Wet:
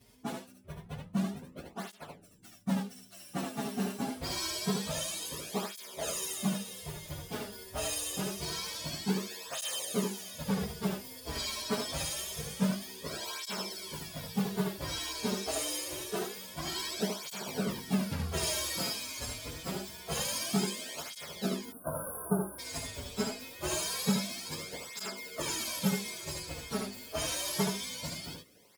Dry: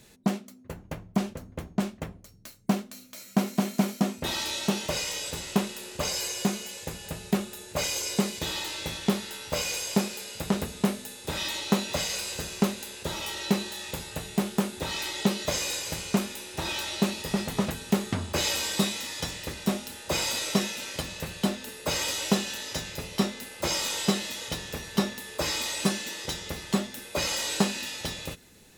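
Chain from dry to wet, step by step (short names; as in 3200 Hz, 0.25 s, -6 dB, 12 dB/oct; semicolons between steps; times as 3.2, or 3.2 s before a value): inharmonic rescaling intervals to 110%; 15.39–16.35 resonant low shelf 250 Hz -8 dB, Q 3; 21.65–22.59 spectral delete 1600–9100 Hz; on a send: echo 74 ms -4 dB; on the sum: tape flanging out of phase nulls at 0.26 Hz, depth 6.2 ms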